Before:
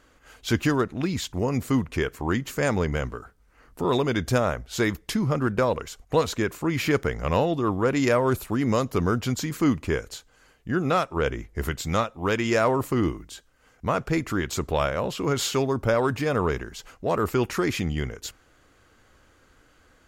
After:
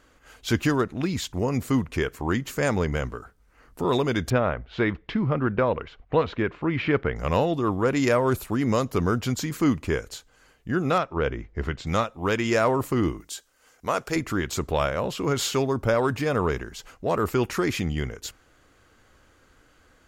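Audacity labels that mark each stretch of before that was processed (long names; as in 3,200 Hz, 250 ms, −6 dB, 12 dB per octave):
4.300000	7.160000	low-pass filter 3,200 Hz 24 dB per octave
10.980000	11.870000	high-frequency loss of the air 160 metres
13.200000	14.160000	bass and treble bass −11 dB, treble +8 dB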